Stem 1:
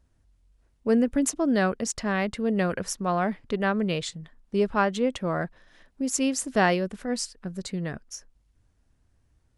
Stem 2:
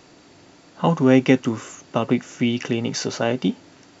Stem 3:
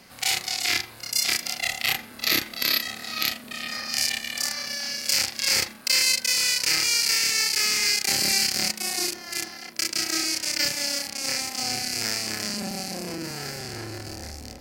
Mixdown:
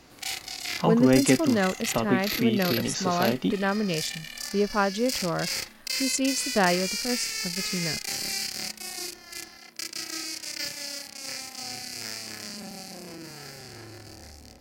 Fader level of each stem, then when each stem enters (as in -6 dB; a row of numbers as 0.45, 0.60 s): -1.0, -5.0, -8.5 dB; 0.00, 0.00, 0.00 s